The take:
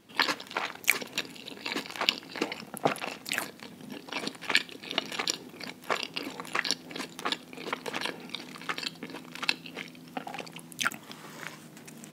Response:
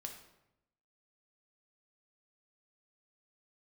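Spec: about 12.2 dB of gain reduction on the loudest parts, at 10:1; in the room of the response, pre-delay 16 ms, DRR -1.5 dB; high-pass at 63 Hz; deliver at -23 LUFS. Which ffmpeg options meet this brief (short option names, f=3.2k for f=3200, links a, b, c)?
-filter_complex "[0:a]highpass=63,acompressor=threshold=-32dB:ratio=10,asplit=2[a][b];[1:a]atrim=start_sample=2205,adelay=16[c];[b][c]afir=irnorm=-1:irlink=0,volume=5dB[d];[a][d]amix=inputs=2:normalize=0,volume=12.5dB"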